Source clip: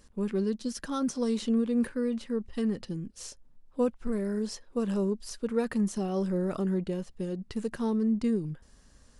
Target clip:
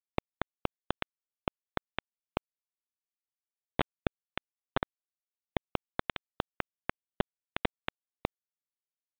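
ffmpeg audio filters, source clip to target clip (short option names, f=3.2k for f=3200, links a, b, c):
-af "bandreject=f=47.12:t=h:w=4,bandreject=f=94.24:t=h:w=4,bandreject=f=141.36:t=h:w=4,bandreject=f=188.48:t=h:w=4,bandreject=f=235.6:t=h:w=4,bandreject=f=282.72:t=h:w=4,bandreject=f=329.84:t=h:w=4,bandreject=f=376.96:t=h:w=4,bandreject=f=424.08:t=h:w=4,bandreject=f=471.2:t=h:w=4,bandreject=f=518.32:t=h:w=4,afftfilt=real='hypot(re,im)*cos(2*PI*random(0))':imag='hypot(re,im)*sin(2*PI*random(1))':win_size=512:overlap=0.75,equalizer=f=1.4k:w=0.62:g=-5,acompressor=threshold=-41dB:ratio=8,afftdn=nr=27:nf=-65,aresample=11025,acrusher=bits=3:dc=4:mix=0:aa=0.000001,aresample=44100,aresample=8000,aresample=44100,volume=17dB"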